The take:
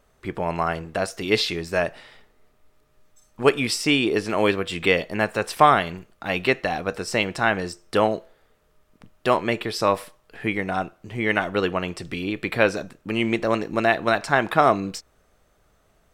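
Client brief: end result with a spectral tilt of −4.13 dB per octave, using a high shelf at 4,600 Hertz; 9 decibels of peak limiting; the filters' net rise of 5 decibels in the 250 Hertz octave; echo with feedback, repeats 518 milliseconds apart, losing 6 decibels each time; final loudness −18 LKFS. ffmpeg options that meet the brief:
ffmpeg -i in.wav -af "equalizer=frequency=250:width_type=o:gain=6.5,highshelf=frequency=4600:gain=8.5,alimiter=limit=-9.5dB:level=0:latency=1,aecho=1:1:518|1036|1554|2072|2590|3108:0.501|0.251|0.125|0.0626|0.0313|0.0157,volume=5dB" out.wav

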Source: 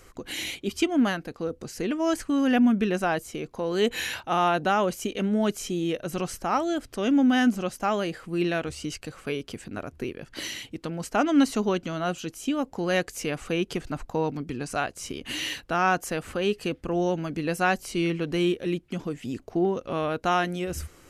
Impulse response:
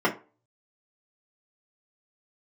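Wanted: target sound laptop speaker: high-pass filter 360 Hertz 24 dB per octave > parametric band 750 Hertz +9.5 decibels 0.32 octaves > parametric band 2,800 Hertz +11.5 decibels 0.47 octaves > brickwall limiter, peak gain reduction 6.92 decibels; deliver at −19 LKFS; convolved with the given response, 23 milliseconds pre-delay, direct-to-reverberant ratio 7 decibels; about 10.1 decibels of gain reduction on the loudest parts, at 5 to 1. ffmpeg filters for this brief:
-filter_complex "[0:a]acompressor=threshold=-28dB:ratio=5,asplit=2[link_01][link_02];[1:a]atrim=start_sample=2205,adelay=23[link_03];[link_02][link_03]afir=irnorm=-1:irlink=0,volume=-22dB[link_04];[link_01][link_04]amix=inputs=2:normalize=0,highpass=frequency=360:width=0.5412,highpass=frequency=360:width=1.3066,equalizer=frequency=750:width_type=o:width=0.32:gain=9.5,equalizer=frequency=2800:width_type=o:width=0.47:gain=11.5,volume=13dB,alimiter=limit=-7dB:level=0:latency=1"

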